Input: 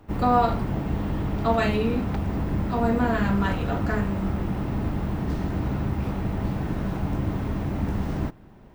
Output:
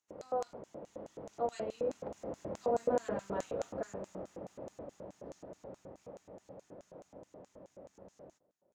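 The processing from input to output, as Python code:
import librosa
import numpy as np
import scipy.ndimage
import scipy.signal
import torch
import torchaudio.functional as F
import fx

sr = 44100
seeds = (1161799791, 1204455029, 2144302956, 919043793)

y = fx.doppler_pass(x, sr, speed_mps=14, closest_m=14.0, pass_at_s=3.04)
y = fx.filter_lfo_bandpass(y, sr, shape='square', hz=4.7, low_hz=540.0, high_hz=6700.0, q=6.3)
y = y * 10.0 ** (6.0 / 20.0)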